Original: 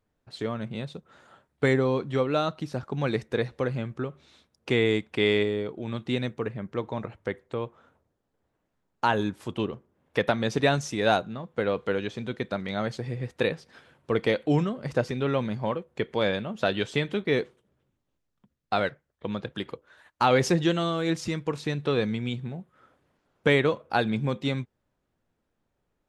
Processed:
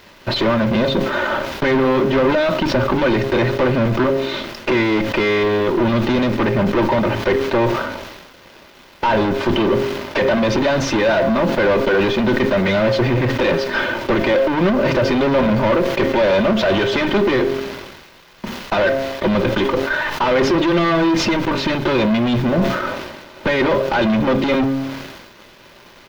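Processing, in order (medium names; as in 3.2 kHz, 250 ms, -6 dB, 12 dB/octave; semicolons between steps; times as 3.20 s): high-pass 100 Hz 24 dB/octave; comb 3.3 ms, depth 85%; de-hum 134.8 Hz, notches 5; peak limiter -18.5 dBFS, peak gain reduction 12 dB; compression 4:1, threshold -43 dBFS, peak gain reduction 17 dB; added noise violet -61 dBFS; fuzz box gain 57 dB, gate -58 dBFS; distance through air 270 m; reverberation RT60 0.40 s, pre-delay 5 ms, DRR 12.5 dB; decay stretcher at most 45 dB/s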